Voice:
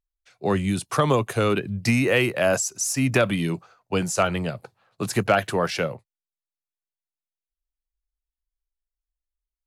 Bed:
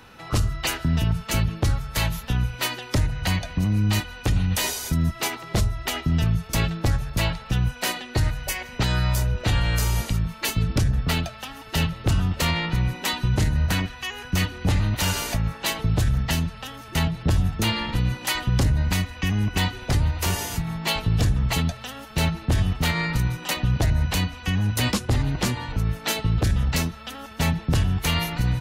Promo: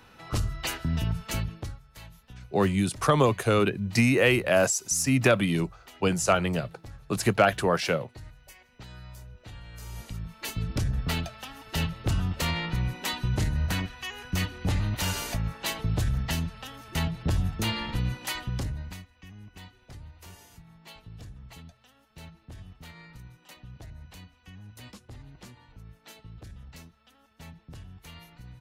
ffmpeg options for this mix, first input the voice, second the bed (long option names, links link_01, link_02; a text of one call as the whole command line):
ffmpeg -i stem1.wav -i stem2.wav -filter_complex "[0:a]adelay=2100,volume=-1dB[link_01];[1:a]volume=11.5dB,afade=type=out:start_time=1.27:duration=0.52:silence=0.141254,afade=type=in:start_time=9.73:duration=1.31:silence=0.133352,afade=type=out:start_time=18.06:duration=1.01:silence=0.11885[link_02];[link_01][link_02]amix=inputs=2:normalize=0" out.wav